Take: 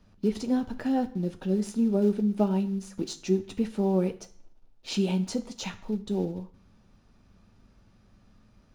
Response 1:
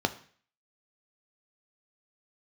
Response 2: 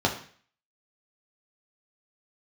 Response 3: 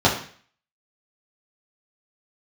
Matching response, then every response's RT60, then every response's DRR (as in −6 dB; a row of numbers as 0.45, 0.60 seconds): 1; 0.45, 0.45, 0.45 seconds; 8.0, −0.5, −6.0 decibels